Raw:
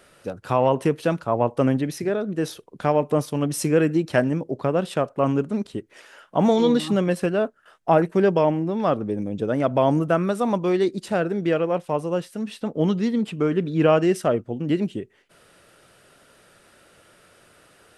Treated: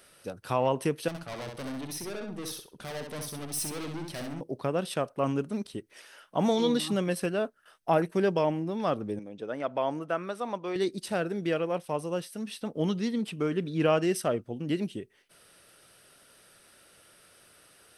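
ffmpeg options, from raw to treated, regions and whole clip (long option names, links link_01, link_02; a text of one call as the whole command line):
ffmpeg -i in.wav -filter_complex "[0:a]asettb=1/sr,asplit=3[link_01][link_02][link_03];[link_01]atrim=end=1.084[link_04];[link_02]atrim=start=1.08:end=4.41,asetpts=PTS-STARTPTS,afade=type=in:duration=0.004:curve=qsin,afade=type=out:start_time=3.326:duration=0.004:curve=qsin,aeval=exprs='(tanh(28.2*val(0)+0.4)-tanh(0.4))/28.2':channel_layout=same,aecho=1:1:65|130|195:0.562|0.129|0.0297,atrim=end_sample=146853[link_05];[link_03]atrim=start=4.406[link_06];[link_04][link_05]acrossfade=duration=0.004:curve1=hsin:curve2=qsin[link_07];[link_07][link_06]acrossfade=duration=0.004:curve1=qsin:curve2=hsin,asettb=1/sr,asplit=3[link_08][link_09][link_10];[link_08]atrim=end=9.194[link_11];[link_09]atrim=start=9.19:end=10.76,asetpts=PTS-STARTPTS,afade=type=in:duration=0.004:curve=qsin,afade=type=out:start_time=1.566:duration=0.004:curve=qsin,highpass=frequency=640:poles=1,aemphasis=mode=reproduction:type=75fm[link_12];[link_10]atrim=start=10.756[link_13];[link_11][link_12]acrossfade=duration=0.004:curve1=hsin:curve2=qsin[link_14];[link_14][link_13]acrossfade=duration=0.004:curve1=qsin:curve2=hsin,highshelf=frequency=3400:gain=11.5,bandreject=frequency=7100:width=5.1,volume=-7.5dB" out.wav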